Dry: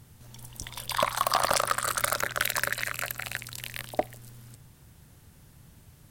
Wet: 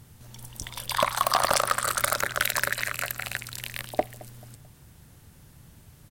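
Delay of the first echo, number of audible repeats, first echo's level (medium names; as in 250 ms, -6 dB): 219 ms, 2, -21.5 dB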